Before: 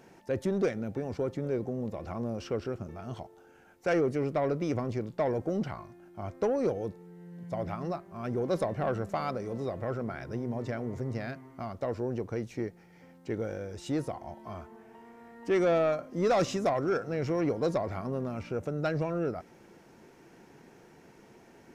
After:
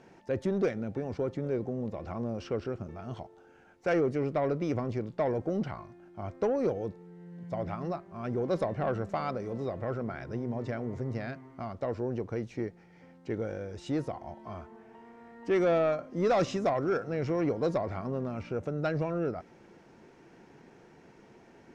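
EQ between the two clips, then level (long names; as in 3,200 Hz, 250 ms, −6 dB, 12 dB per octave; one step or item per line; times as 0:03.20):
high-frequency loss of the air 70 metres
0.0 dB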